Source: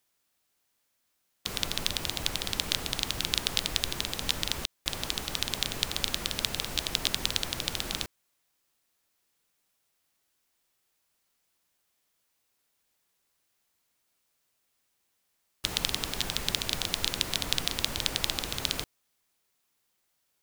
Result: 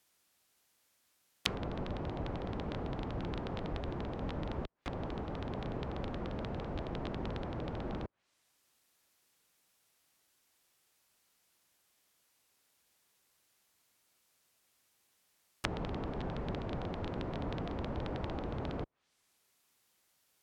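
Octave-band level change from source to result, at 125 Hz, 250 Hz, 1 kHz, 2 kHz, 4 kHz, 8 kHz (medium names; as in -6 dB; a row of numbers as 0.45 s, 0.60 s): +2.0 dB, +3.0 dB, -2.0 dB, -11.5 dB, -20.0 dB, -24.5 dB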